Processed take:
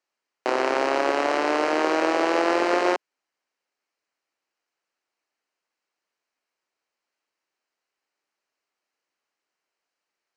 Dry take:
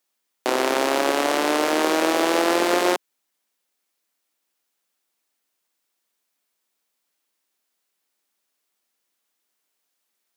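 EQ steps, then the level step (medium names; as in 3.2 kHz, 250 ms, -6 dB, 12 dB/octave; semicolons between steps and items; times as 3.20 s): distance through air 130 m; peaking EQ 200 Hz -8 dB 0.96 oct; peaking EQ 3.5 kHz -11 dB 0.22 oct; 0.0 dB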